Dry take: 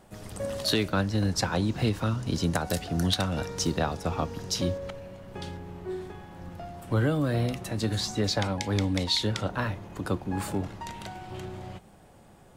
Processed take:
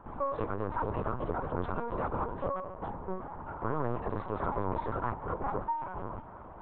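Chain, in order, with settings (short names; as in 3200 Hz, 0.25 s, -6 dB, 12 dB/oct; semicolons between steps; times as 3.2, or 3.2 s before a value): minimum comb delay 2.2 ms; limiter -24 dBFS, peak gain reduction 9.5 dB; reverse; upward compressor, threshold -41 dBFS; reverse; tempo 1.9×; hard clip -29.5 dBFS, distortion -15 dB; synth low-pass 1100 Hz, resonance Q 4.2; on a send: thinning echo 0.125 s, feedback 58%, high-pass 510 Hz, level -24 dB; on the sum: LPC vocoder at 8 kHz pitch kept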